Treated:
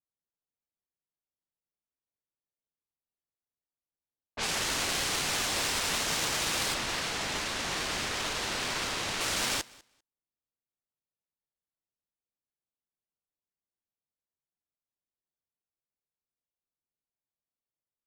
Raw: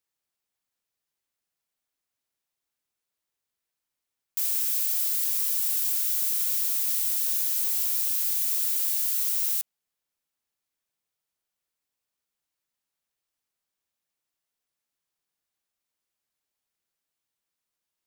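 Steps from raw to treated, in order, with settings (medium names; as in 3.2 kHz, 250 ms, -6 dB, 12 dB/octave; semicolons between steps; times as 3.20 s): tone controls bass +7 dB, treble +1 dB; sample-rate reducer 13 kHz, jitter 0%; level-controlled noise filter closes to 790 Hz, open at -21 dBFS; 6.74–9.21 s: treble shelf 7.6 kHz -10.5 dB; feedback delay 197 ms, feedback 15%, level -16 dB; upward expansion 1.5:1, over -41 dBFS; trim -5 dB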